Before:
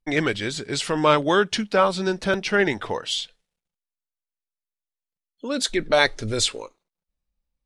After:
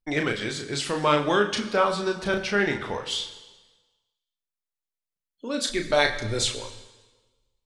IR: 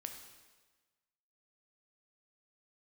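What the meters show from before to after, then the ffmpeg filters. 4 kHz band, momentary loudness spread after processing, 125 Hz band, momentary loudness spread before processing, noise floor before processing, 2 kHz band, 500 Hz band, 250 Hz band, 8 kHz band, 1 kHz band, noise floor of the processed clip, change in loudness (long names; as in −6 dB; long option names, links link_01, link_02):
−2.5 dB, 8 LU, −2.5 dB, 9 LU, below −85 dBFS, −2.5 dB, −3.0 dB, −3.0 dB, −2.5 dB, −2.5 dB, below −85 dBFS, −3.0 dB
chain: -filter_complex "[0:a]asplit=2[link_01][link_02];[link_02]asubboost=boost=2.5:cutoff=150[link_03];[1:a]atrim=start_sample=2205,adelay=34[link_04];[link_03][link_04]afir=irnorm=-1:irlink=0,volume=-1dB[link_05];[link_01][link_05]amix=inputs=2:normalize=0,volume=-4dB"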